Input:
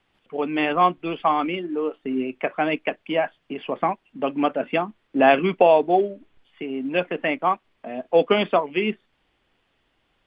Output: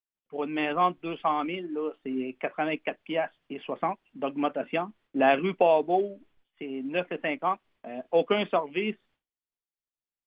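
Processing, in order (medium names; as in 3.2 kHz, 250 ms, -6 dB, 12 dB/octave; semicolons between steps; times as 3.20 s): expander -49 dBFS; trim -6 dB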